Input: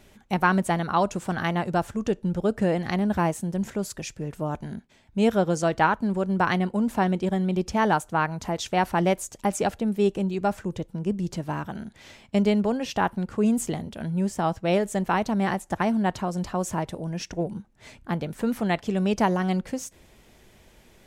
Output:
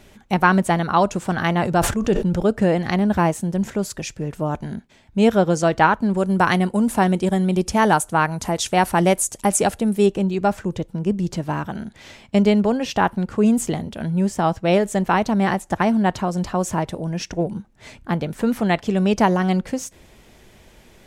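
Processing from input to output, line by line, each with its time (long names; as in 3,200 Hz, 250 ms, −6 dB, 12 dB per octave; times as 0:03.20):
0:01.46–0:02.45: level that may fall only so fast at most 66 dB per second
0:06.17–0:10.06: parametric band 10,000 Hz +12.5 dB 0.91 octaves
whole clip: high-shelf EQ 11,000 Hz −3.5 dB; level +5.5 dB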